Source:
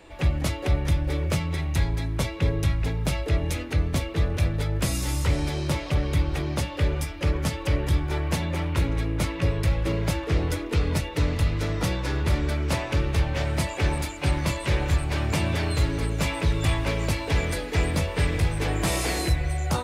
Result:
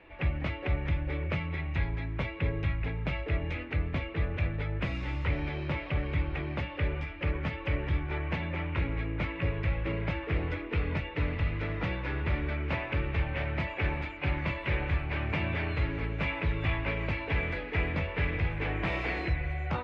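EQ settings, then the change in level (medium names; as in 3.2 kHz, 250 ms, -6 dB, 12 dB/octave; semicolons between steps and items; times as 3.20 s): four-pole ladder low-pass 2.8 kHz, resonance 45%; +2.0 dB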